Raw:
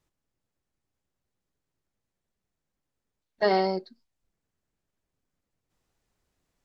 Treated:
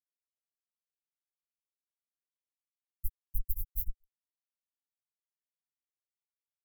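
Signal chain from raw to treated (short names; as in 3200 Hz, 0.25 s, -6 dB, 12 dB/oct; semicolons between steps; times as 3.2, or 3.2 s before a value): fuzz box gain 35 dB, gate -41 dBFS; inverse Chebyshev band-stop 360–3900 Hz, stop band 80 dB; grains, grains 20/s, spray 0.421 s; gain +10.5 dB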